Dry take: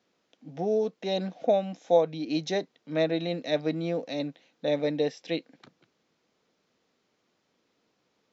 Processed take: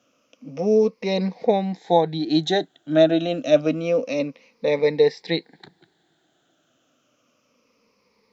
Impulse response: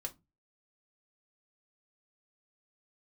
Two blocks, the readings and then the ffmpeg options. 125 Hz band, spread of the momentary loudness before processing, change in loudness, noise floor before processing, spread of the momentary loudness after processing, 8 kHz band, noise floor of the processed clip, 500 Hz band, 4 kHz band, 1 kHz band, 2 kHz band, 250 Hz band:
+7.0 dB, 10 LU, +7.5 dB, -75 dBFS, 9 LU, no reading, -67 dBFS, +7.5 dB, +7.5 dB, +8.0 dB, +7.0 dB, +8.0 dB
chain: -af "afftfilt=real='re*pow(10,14/40*sin(2*PI*(0.88*log(max(b,1)*sr/1024/100)/log(2)-(-0.28)*(pts-256)/sr)))':imag='im*pow(10,14/40*sin(2*PI*(0.88*log(max(b,1)*sr/1024/100)/log(2)-(-0.28)*(pts-256)/sr)))':win_size=1024:overlap=0.75,volume=1.88"

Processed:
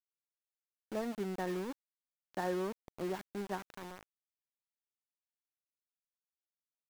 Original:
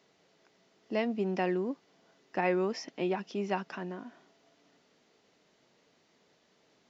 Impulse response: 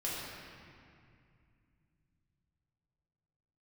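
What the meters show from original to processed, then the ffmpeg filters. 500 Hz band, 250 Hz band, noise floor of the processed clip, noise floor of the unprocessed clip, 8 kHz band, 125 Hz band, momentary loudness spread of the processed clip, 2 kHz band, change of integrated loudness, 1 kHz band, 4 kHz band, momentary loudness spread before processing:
-7.0 dB, -6.5 dB, under -85 dBFS, -69 dBFS, no reading, -6.0 dB, 13 LU, -8.0 dB, -6.5 dB, -6.5 dB, -6.5 dB, 12 LU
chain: -af "adynamicequalizer=threshold=0.00355:dfrequency=630:dqfactor=3.4:tfrequency=630:tqfactor=3.4:attack=5:release=100:ratio=0.375:range=2.5:mode=cutabove:tftype=bell,afftfilt=real='re*between(b*sr/4096,140,1900)':imag='im*between(b*sr/4096,140,1900)':win_size=4096:overlap=0.75,aeval=exprs='val(0)*gte(abs(val(0)),0.0178)':c=same,volume=0.501"

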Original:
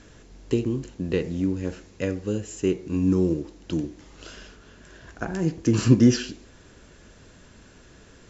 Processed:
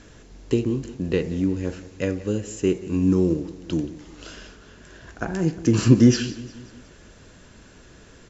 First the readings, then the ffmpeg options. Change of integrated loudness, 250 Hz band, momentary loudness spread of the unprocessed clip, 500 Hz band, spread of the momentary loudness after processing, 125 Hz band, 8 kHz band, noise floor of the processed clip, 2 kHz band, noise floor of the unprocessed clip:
+2.0 dB, +2.0 dB, 16 LU, +2.0 dB, 18 LU, +2.0 dB, no reading, -49 dBFS, +2.0 dB, -52 dBFS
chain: -af "aecho=1:1:179|358|537|716:0.126|0.0655|0.034|0.0177,volume=1.26"

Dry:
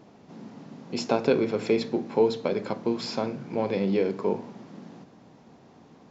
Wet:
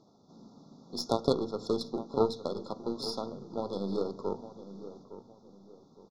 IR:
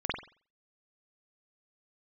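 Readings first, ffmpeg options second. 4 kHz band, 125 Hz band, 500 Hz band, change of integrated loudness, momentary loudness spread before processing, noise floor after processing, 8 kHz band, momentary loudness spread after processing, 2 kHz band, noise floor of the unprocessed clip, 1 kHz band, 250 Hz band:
-2.0 dB, -6.0 dB, -6.5 dB, -6.5 dB, 20 LU, -62 dBFS, no reading, 17 LU, under -25 dB, -54 dBFS, -4.5 dB, -7.0 dB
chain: -filter_complex "[0:a]lowpass=f=5500:t=q:w=2.4,aeval=exprs='0.398*(cos(1*acos(clip(val(0)/0.398,-1,1)))-cos(1*PI/2))+0.0631*(cos(3*acos(clip(val(0)/0.398,-1,1)))-cos(3*PI/2))+0.0708*(cos(4*acos(clip(val(0)/0.398,-1,1)))-cos(4*PI/2))+0.0501*(cos(6*acos(clip(val(0)/0.398,-1,1)))-cos(6*PI/2))+0.00631*(cos(7*acos(clip(val(0)/0.398,-1,1)))-cos(7*PI/2))':c=same,afftfilt=real='re*(1-between(b*sr/4096,1400,3400))':imag='im*(1-between(b*sr/4096,1400,3400))':win_size=4096:overlap=0.75,asplit=2[s0][s1];[s1]adelay=861,lowpass=f=1400:p=1,volume=0.224,asplit=2[s2][s3];[s3]adelay=861,lowpass=f=1400:p=1,volume=0.35,asplit=2[s4][s5];[s5]adelay=861,lowpass=f=1400:p=1,volume=0.35[s6];[s2][s4][s6]amix=inputs=3:normalize=0[s7];[s0][s7]amix=inputs=2:normalize=0,volume=0.75"

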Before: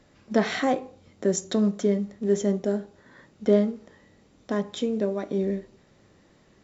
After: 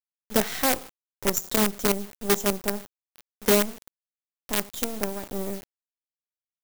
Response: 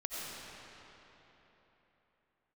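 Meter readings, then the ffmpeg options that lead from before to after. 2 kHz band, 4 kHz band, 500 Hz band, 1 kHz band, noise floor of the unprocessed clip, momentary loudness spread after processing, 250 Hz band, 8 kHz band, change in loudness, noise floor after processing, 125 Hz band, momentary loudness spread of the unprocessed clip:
+4.5 dB, +7.0 dB, -3.0 dB, +2.5 dB, -60 dBFS, 11 LU, -4.5 dB, no reading, +0.5 dB, under -85 dBFS, -4.5 dB, 8 LU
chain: -af "acrusher=bits=4:dc=4:mix=0:aa=0.000001,aemphasis=mode=production:type=50kf,volume=0.75"

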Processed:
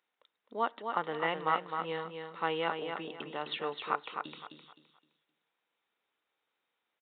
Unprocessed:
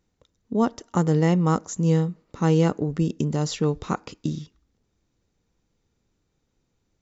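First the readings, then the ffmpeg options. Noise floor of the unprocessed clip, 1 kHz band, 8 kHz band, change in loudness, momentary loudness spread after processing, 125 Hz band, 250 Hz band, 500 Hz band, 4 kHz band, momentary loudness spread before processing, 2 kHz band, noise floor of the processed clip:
-74 dBFS, -2.0 dB, no reading, -11.5 dB, 10 LU, -29.0 dB, -21.5 dB, -10.5 dB, -2.0 dB, 11 LU, +1.0 dB, -85 dBFS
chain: -filter_complex "[0:a]highpass=920,asplit=2[s0][s1];[s1]aecho=0:1:259|518|777|1036:0.501|0.145|0.0421|0.0122[s2];[s0][s2]amix=inputs=2:normalize=0,aresample=8000,aresample=44100"

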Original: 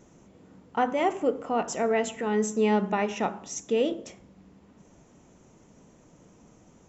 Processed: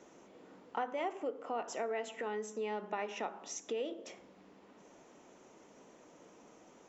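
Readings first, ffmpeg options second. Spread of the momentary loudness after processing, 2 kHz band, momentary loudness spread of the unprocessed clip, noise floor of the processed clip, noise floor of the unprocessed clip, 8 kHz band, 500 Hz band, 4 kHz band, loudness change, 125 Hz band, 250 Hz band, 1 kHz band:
21 LU, -10.0 dB, 8 LU, -61 dBFS, -57 dBFS, no reading, -12.0 dB, -9.5 dB, -12.0 dB, under -20 dB, -17.5 dB, -11.0 dB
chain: -filter_complex "[0:a]acompressor=threshold=0.0112:ratio=3,acrossover=split=280 6300:gain=0.0891 1 0.224[s0][s1][s2];[s0][s1][s2]amix=inputs=3:normalize=0,volume=1.19"

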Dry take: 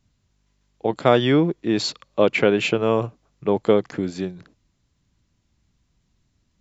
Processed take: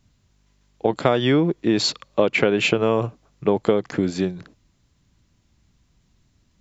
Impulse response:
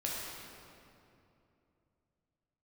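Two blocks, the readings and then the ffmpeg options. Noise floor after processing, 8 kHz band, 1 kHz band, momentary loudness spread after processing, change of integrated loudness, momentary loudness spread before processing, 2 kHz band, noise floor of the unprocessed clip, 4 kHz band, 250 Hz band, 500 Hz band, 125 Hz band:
-64 dBFS, no reading, -1.0 dB, 8 LU, 0.0 dB, 11 LU, +1.5 dB, -69 dBFS, +2.5 dB, +0.5 dB, -0.5 dB, +0.5 dB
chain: -af "acompressor=threshold=0.112:ratio=6,volume=1.78"

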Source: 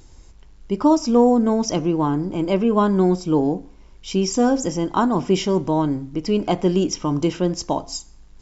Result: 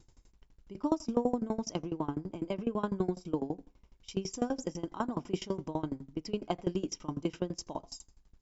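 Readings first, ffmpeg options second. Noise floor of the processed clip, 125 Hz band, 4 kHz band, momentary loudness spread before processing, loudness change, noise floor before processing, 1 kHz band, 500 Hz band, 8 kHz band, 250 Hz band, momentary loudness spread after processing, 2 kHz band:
-68 dBFS, -15.0 dB, -15.0 dB, 10 LU, -15.5 dB, -47 dBFS, -16.0 dB, -15.5 dB, no reading, -15.5 dB, 9 LU, -15.0 dB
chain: -af "aeval=exprs='val(0)*pow(10,-23*if(lt(mod(12*n/s,1),2*abs(12)/1000),1-mod(12*n/s,1)/(2*abs(12)/1000),(mod(12*n/s,1)-2*abs(12)/1000)/(1-2*abs(12)/1000))/20)':c=same,volume=0.376"

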